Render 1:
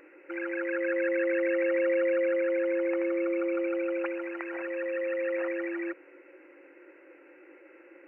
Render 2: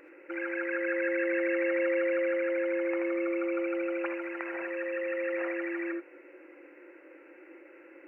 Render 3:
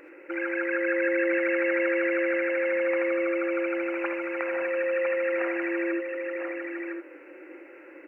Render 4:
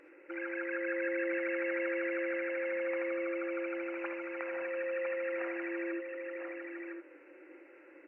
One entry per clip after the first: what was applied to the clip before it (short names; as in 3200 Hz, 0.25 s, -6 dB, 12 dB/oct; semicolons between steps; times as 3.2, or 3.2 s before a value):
non-linear reverb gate 0.1 s rising, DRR 5.5 dB
echo 1.007 s -5 dB; gain +4.5 dB
gain -8.5 dB; MP3 48 kbps 22050 Hz